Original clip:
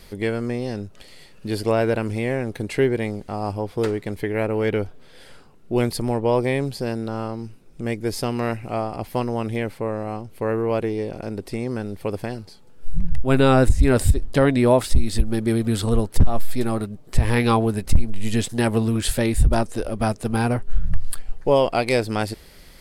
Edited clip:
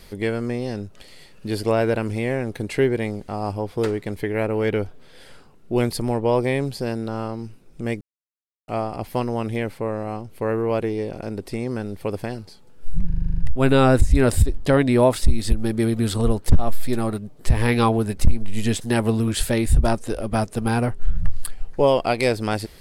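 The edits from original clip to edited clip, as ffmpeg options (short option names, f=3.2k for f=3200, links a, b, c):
-filter_complex "[0:a]asplit=11[a][b][c][d][e][f][g][h][i][j][k];[a]atrim=end=8.01,asetpts=PTS-STARTPTS,afade=t=out:st=8.006:d=0.004:c=hsin[l];[b]atrim=start=8.01:end=8.68,asetpts=PTS-STARTPTS,volume=0[m];[c]atrim=start=8.68:end=13.102,asetpts=PTS-STARTPTS,afade=t=in:d=0.004:c=hsin[n];[d]atrim=start=13.058:end=13.102[o];[e]atrim=start=13.058:end=13.102[p];[f]atrim=start=13.058:end=13.102[q];[g]atrim=start=13.058:end=13.102[r];[h]atrim=start=13.058:end=13.102[s];[i]atrim=start=13.058:end=13.102[t];[j]atrim=start=13.058:end=13.102[u];[k]atrim=start=13.058[v];[l][m][n]concat=n=3:v=0:a=1[w];[w][o]acrossfade=d=0.004:c1=hsin:c2=hsin[x];[x][p]acrossfade=d=0.004:c1=hsin:c2=hsin[y];[y][q]acrossfade=d=0.004:c1=hsin:c2=hsin[z];[z][r]acrossfade=d=0.004:c1=hsin:c2=hsin[aa];[aa][s]acrossfade=d=0.004:c1=hsin:c2=hsin[ab];[ab][t]acrossfade=d=0.004:c1=hsin:c2=hsin[ac];[ac][u]acrossfade=d=0.004:c1=hsin:c2=hsin[ad];[ad][v]acrossfade=d=0.004:c1=hsin:c2=hsin"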